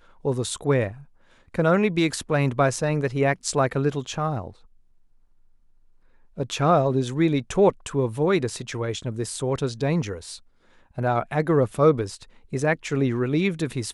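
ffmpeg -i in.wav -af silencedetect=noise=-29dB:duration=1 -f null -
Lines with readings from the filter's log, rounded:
silence_start: 4.47
silence_end: 6.39 | silence_duration: 1.91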